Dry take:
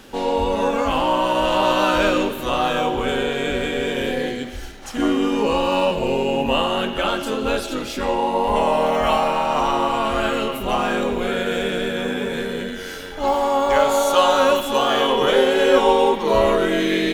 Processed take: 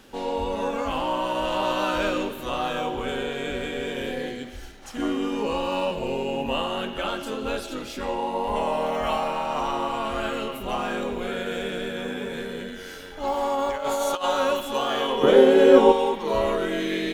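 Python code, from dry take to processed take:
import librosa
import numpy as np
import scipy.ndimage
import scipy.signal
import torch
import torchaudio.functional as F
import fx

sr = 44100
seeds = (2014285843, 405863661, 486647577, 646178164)

y = fx.over_compress(x, sr, threshold_db=-18.0, ratio=-0.5, at=(13.37, 14.24))
y = fx.peak_eq(y, sr, hz=260.0, db=12.0, octaves=2.8, at=(15.23, 15.92))
y = y * 10.0 ** (-7.0 / 20.0)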